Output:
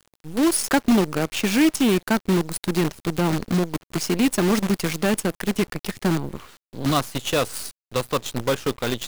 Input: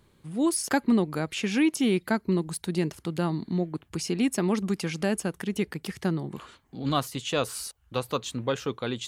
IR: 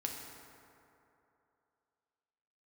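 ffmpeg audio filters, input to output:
-af "aeval=exprs='0.266*(cos(1*acos(clip(val(0)/0.266,-1,1)))-cos(1*PI/2))+0.0106*(cos(2*acos(clip(val(0)/0.266,-1,1)))-cos(2*PI/2))+0.0668*(cos(4*acos(clip(val(0)/0.266,-1,1)))-cos(4*PI/2))+0.00237*(cos(5*acos(clip(val(0)/0.266,-1,1)))-cos(5*PI/2))+0.0422*(cos(6*acos(clip(val(0)/0.266,-1,1)))-cos(6*PI/2))':c=same,acontrast=32,acrusher=bits=5:dc=4:mix=0:aa=0.000001"

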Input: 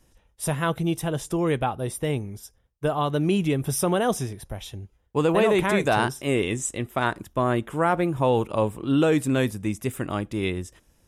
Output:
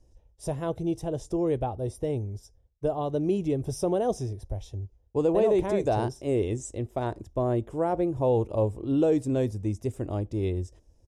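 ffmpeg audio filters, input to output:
-af "firequalizer=gain_entry='entry(100,0);entry(150,-12);entry(250,-9);entry(350,-5);entry(640,-6);entry(1300,-22);entry(3400,-19);entry(5400,-10);entry(13000,-26)':delay=0.05:min_phase=1,volume=1.58"

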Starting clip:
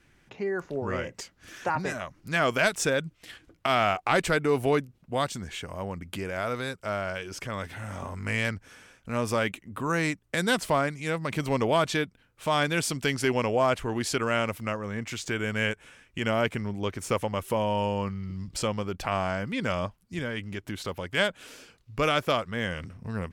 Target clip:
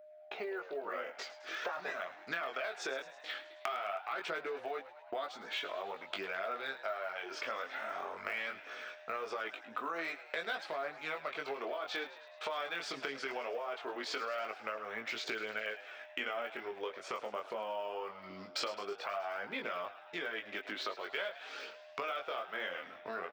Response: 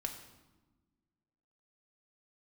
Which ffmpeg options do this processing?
-filter_complex "[0:a]acrossover=split=560|2600[s0][s1][s2];[s2]acontrast=83[s3];[s0][s1][s3]amix=inputs=3:normalize=0,highpass=350,equalizer=f=410:t=q:w=4:g=6,equalizer=f=670:t=q:w=4:g=9,equalizer=f=1300:t=q:w=4:g=8,equalizer=f=2900:t=q:w=4:g=-6,lowpass=f=3400:w=0.5412,lowpass=f=3400:w=1.3066,alimiter=limit=0.168:level=0:latency=1,aphaser=in_gain=1:out_gain=1:delay=4.1:decay=0.38:speed=0.46:type=triangular,agate=range=0.0631:threshold=0.00316:ratio=16:detection=peak,flanger=delay=18:depth=4.9:speed=0.2,aeval=exprs='val(0)+0.00141*sin(2*PI*610*n/s)':c=same,acompressor=threshold=0.00708:ratio=5,aemphasis=mode=production:type=bsi,asplit=2[s4][s5];[s5]asplit=7[s6][s7][s8][s9][s10][s11][s12];[s6]adelay=106,afreqshift=79,volume=0.178[s13];[s7]adelay=212,afreqshift=158,volume=0.116[s14];[s8]adelay=318,afreqshift=237,volume=0.075[s15];[s9]adelay=424,afreqshift=316,volume=0.049[s16];[s10]adelay=530,afreqshift=395,volume=0.0316[s17];[s11]adelay=636,afreqshift=474,volume=0.0207[s18];[s12]adelay=742,afreqshift=553,volume=0.0133[s19];[s13][s14][s15][s16][s17][s18][s19]amix=inputs=7:normalize=0[s20];[s4][s20]amix=inputs=2:normalize=0,volume=1.78"

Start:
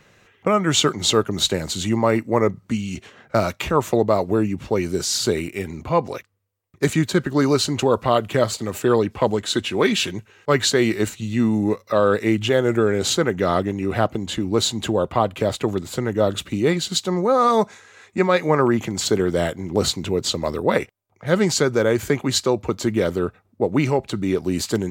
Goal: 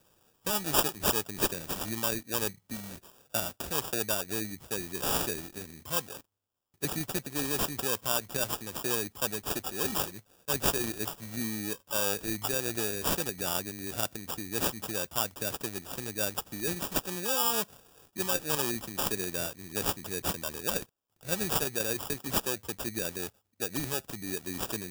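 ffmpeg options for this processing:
-af "highshelf=f=4400:g=12,acrusher=samples=21:mix=1:aa=0.000001,crystalizer=i=3.5:c=0,volume=0.141"

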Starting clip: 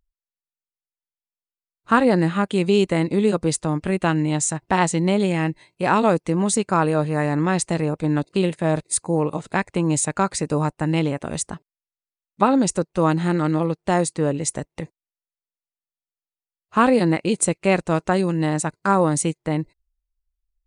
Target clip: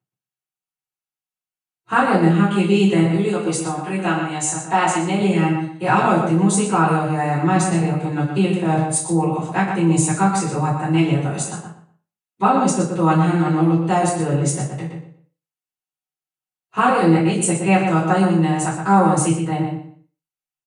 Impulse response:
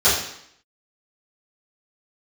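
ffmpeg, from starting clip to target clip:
-filter_complex "[0:a]asettb=1/sr,asplit=3[s0][s1][s2];[s0]atrim=end=3.024[s3];[s1]atrim=start=3.02:end=5.19,asetpts=PTS-STARTPTS,afade=t=in:d=0.004:c=qsin,afade=t=out:st=2.166:d=0.004:c=qsin,highpass=f=350:p=1[s4];[s2]atrim=start=5.186[s5];[s3][s4]acrossfade=d=0.004:c1=hsin:c2=qsin[s6];[s6][s5]acrossfade=d=0.004:c1=qsin:c2=hsin,asplit=2[s7][s8];[s8]adelay=120,lowpass=f=3800:p=1,volume=0.562,asplit=2[s9][s10];[s10]adelay=120,lowpass=f=3800:p=1,volume=0.24,asplit=2[s11][s12];[s12]adelay=120,lowpass=f=3800:p=1,volume=0.24[s13];[s7][s9][s11][s13]amix=inputs=4:normalize=0[s14];[1:a]atrim=start_sample=2205,asetrate=83790,aresample=44100[s15];[s14][s15]afir=irnorm=-1:irlink=0,volume=0.2"

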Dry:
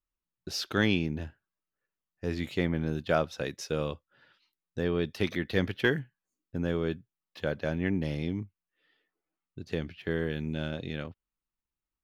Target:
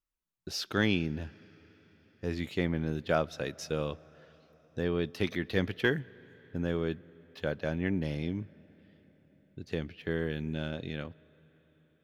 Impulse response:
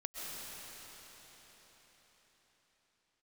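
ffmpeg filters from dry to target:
-filter_complex "[0:a]asplit=2[s0][s1];[1:a]atrim=start_sample=2205,highshelf=f=5700:g=-9.5[s2];[s1][s2]afir=irnorm=-1:irlink=0,volume=0.075[s3];[s0][s3]amix=inputs=2:normalize=0,volume=0.794"

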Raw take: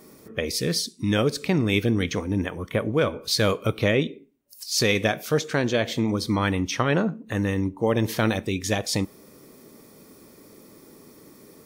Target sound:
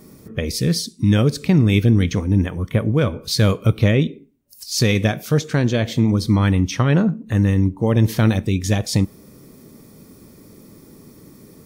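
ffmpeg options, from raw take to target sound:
-af "bass=f=250:g=12,treble=f=4000:g=2"

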